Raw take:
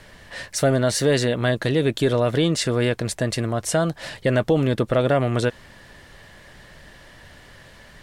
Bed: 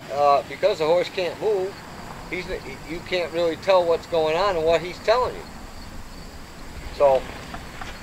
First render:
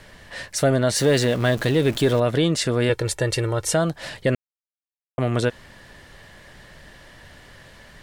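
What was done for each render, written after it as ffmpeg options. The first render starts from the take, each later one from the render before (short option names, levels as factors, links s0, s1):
-filter_complex "[0:a]asettb=1/sr,asplit=3[s0][s1][s2];[s0]atrim=end=0.964[s3];[s1]atrim=start=0.96:end=2.2,asetpts=PTS-STARTPTS,afade=t=in:d=0.004:c=qsin,afade=t=out:st=1.236:d=0.004:c=qsin,aeval=exprs='val(0)+0.5*0.0299*sgn(val(0))':c=same[s4];[s2]atrim=start=2.196[s5];[s3][s4]acrossfade=d=0.004:c1=hsin:c2=qsin[s6];[s6][s5]acrossfade=d=0.004:c1=qsin:c2=hsin,asettb=1/sr,asplit=3[s7][s8][s9];[s7]atrim=end=2.894[s10];[s8]atrim=start=2.89:end=3.74,asetpts=PTS-STARTPTS,afade=t=in:d=0.004:c=qsin,afade=t=out:st=0.846:d=0.004:c=qsin,aecho=1:1:2.2:0.77,atrim=end_sample=37485[s11];[s9]atrim=start=3.736[s12];[s10][s11]acrossfade=d=0.004:c1=hsin:c2=qsin[s13];[s13][s12]acrossfade=d=0.004:c1=qsin:c2=hsin,asplit=3[s14][s15][s16];[s14]atrim=end=4.35,asetpts=PTS-STARTPTS,afade=t=out:st=4.346:d=0.004:c=hsin[s17];[s15]atrim=start=4.35:end=5.18,asetpts=PTS-STARTPTS,volume=0[s18];[s16]atrim=start=5.18,asetpts=PTS-STARTPTS,afade=t=in:d=0.004:c=hsin[s19];[s17][s18][s19]concat=n=3:v=0:a=1"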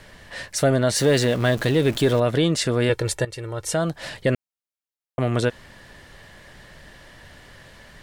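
-filter_complex "[0:a]asplit=2[s0][s1];[s0]atrim=end=3.25,asetpts=PTS-STARTPTS,afade=t=out:st=3.246:d=0.004:c=hsin:silence=0.149624[s2];[s1]atrim=start=3.25,asetpts=PTS-STARTPTS,afade=t=in:d=0.75:silence=0.149624[s3];[s2][s3]concat=n=2:v=0:a=1"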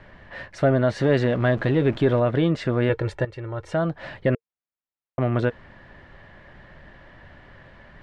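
-af "lowpass=2000,bandreject=f=460:w=12"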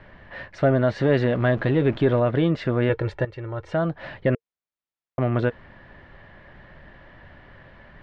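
-af "lowpass=4400"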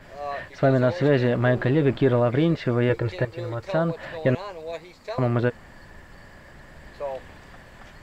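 -filter_complex "[1:a]volume=0.188[s0];[0:a][s0]amix=inputs=2:normalize=0"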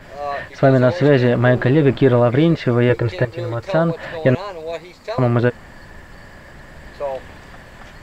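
-af "volume=2.11"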